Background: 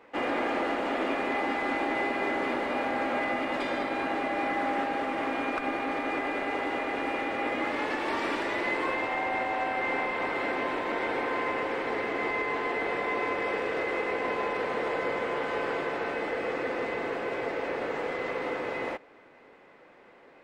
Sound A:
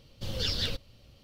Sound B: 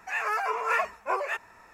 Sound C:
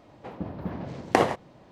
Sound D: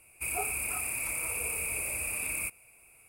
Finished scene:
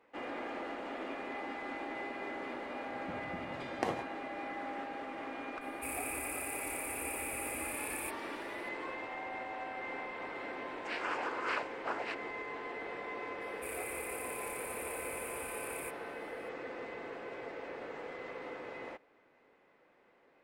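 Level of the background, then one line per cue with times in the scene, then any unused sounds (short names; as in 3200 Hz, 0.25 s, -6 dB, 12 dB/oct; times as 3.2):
background -12 dB
2.68 add C -14 dB
5.61 add D -8 dB
10.77 add B -9.5 dB + noise vocoder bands 8
13.41 add D -12 dB
not used: A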